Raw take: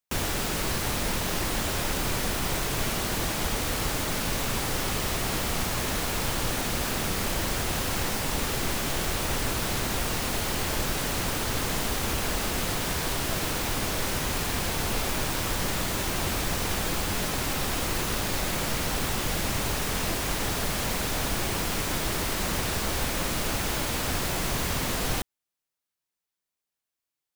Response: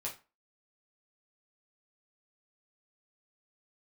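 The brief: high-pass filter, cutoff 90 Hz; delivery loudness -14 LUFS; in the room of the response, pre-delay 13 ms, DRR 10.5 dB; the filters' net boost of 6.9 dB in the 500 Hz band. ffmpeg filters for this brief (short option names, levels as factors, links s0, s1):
-filter_complex "[0:a]highpass=90,equalizer=f=500:t=o:g=8.5,asplit=2[s0][s1];[1:a]atrim=start_sample=2205,adelay=13[s2];[s1][s2]afir=irnorm=-1:irlink=0,volume=0.282[s3];[s0][s3]amix=inputs=2:normalize=0,volume=3.98"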